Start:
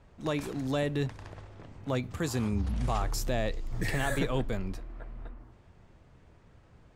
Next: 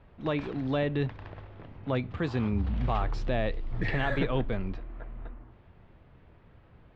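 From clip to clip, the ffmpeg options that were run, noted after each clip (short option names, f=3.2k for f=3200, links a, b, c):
-af "lowpass=f=3.6k:w=0.5412,lowpass=f=3.6k:w=1.3066,volume=1.5dB"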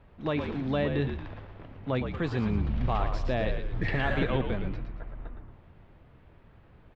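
-filter_complex "[0:a]asplit=6[a][b][c][d][e][f];[b]adelay=114,afreqshift=-62,volume=-7dB[g];[c]adelay=228,afreqshift=-124,volume=-15.2dB[h];[d]adelay=342,afreqshift=-186,volume=-23.4dB[i];[e]adelay=456,afreqshift=-248,volume=-31.5dB[j];[f]adelay=570,afreqshift=-310,volume=-39.7dB[k];[a][g][h][i][j][k]amix=inputs=6:normalize=0"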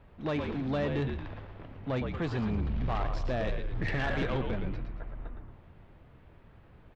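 -af "asoftclip=type=tanh:threshold=-24.5dB"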